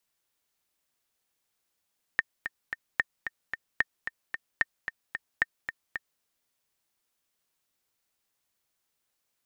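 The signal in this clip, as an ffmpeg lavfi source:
-f lavfi -i "aevalsrc='pow(10,(-9.5-9.5*gte(mod(t,3*60/223),60/223))/20)*sin(2*PI*1820*mod(t,60/223))*exp(-6.91*mod(t,60/223)/0.03)':d=4.03:s=44100"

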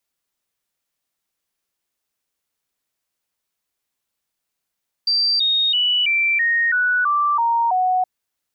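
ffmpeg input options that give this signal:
-f lavfi -i "aevalsrc='0.178*clip(min(mod(t,0.33),0.33-mod(t,0.33))/0.005,0,1)*sin(2*PI*4690*pow(2,-floor(t/0.33)/3)*mod(t,0.33))':d=2.97:s=44100"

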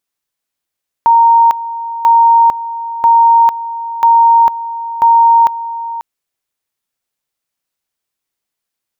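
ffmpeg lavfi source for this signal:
-f lavfi -i "aevalsrc='pow(10,(-4-14.5*gte(mod(t,0.99),0.45))/20)*sin(2*PI*926*t)':d=4.95:s=44100"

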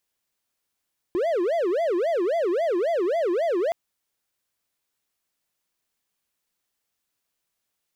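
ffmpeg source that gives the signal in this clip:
-f lavfi -i "aevalsrc='0.119*(1-4*abs(mod((513*t-172/(2*PI*3.7)*sin(2*PI*3.7*t))+0.25,1)-0.5))':d=2.57:s=44100"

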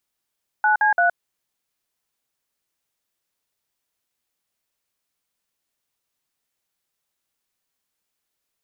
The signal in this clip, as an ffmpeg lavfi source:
-f lavfi -i "aevalsrc='0.141*clip(min(mod(t,0.17),0.118-mod(t,0.17))/0.002,0,1)*(eq(floor(t/0.17),0)*(sin(2*PI*852*mod(t,0.17))+sin(2*PI*1477*mod(t,0.17)))+eq(floor(t/0.17),1)*(sin(2*PI*852*mod(t,0.17))+sin(2*PI*1633*mod(t,0.17)))+eq(floor(t/0.17),2)*(sin(2*PI*697*mod(t,0.17))+sin(2*PI*1477*mod(t,0.17))))':d=0.51:s=44100"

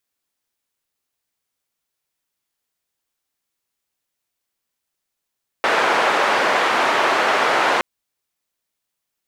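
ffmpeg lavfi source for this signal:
-f lavfi -i "anoisesrc=c=white:d=2.17:r=44100:seed=1,highpass=f=480,lowpass=f=1400,volume=0.6dB"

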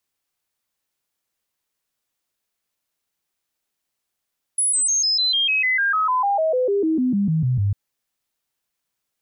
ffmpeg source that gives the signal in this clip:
-f lavfi -i "aevalsrc='0.15*clip(min(mod(t,0.15),0.15-mod(t,0.15))/0.005,0,1)*sin(2*PI*10200*pow(2,-floor(t/0.15)/3)*mod(t,0.15))':d=3.15:s=44100"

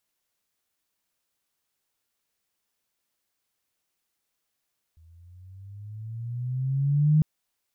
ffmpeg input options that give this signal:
-f lavfi -i "aevalsrc='pow(10,(-15+36.5*(t/2.25-1))/20)*sin(2*PI*80.3*2.25/(11.5*log(2)/12)*(exp(11.5*log(2)/12*t/2.25)-1))':d=2.25:s=44100"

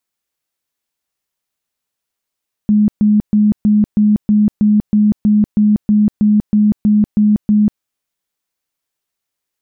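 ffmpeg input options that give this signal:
-f lavfi -i "aevalsrc='0.422*sin(2*PI*210*mod(t,0.32))*lt(mod(t,0.32),40/210)':d=5.12:s=44100"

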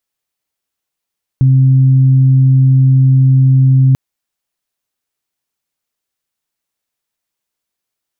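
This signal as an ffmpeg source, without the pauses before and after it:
-f lavfi -i "aevalsrc='0.562*sin(2*PI*132*t)+0.0794*sin(2*PI*264*t)':d=2.54:s=44100"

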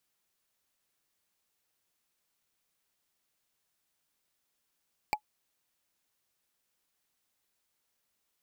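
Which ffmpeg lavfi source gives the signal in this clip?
-f lavfi -i "aevalsrc='0.1*pow(10,-3*t/0.08)*sin(2*PI*848*t)+0.0708*pow(10,-3*t/0.024)*sin(2*PI*2337.9*t)+0.0501*pow(10,-3*t/0.011)*sin(2*PI*4582.6*t)+0.0355*pow(10,-3*t/0.006)*sin(2*PI*7575.2*t)+0.0251*pow(10,-3*t/0.004)*sin(2*PI*11312.3*t)':d=0.45:s=44100"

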